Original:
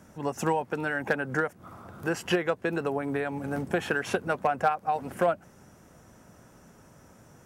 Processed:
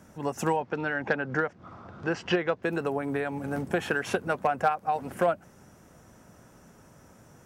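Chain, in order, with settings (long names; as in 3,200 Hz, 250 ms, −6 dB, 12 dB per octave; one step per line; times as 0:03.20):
0:00.56–0:02.63: low-pass filter 5,500 Hz 24 dB per octave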